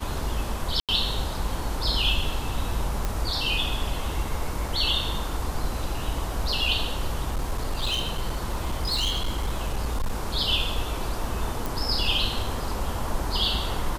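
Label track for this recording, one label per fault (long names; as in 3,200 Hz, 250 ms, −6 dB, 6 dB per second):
0.800000	0.890000	drop-out 87 ms
3.050000	3.050000	click
7.280000	10.130000	clipping −21.5 dBFS
11.660000	11.660000	click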